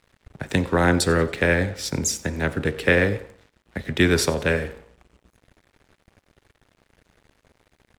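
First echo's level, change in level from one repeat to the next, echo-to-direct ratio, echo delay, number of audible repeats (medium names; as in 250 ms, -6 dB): -21.0 dB, -8.0 dB, -20.0 dB, 92 ms, 2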